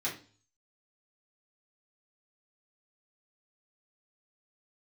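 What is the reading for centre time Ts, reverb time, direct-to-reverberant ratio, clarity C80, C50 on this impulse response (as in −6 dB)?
22 ms, 0.40 s, −7.0 dB, 15.0 dB, 9.0 dB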